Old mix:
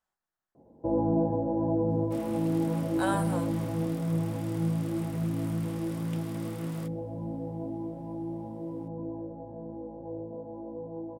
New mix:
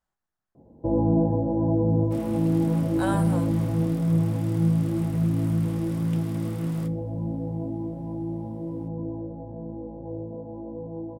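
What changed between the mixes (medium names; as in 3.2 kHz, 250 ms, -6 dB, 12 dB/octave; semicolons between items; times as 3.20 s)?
second sound: send +9.0 dB; master: add bass shelf 230 Hz +11 dB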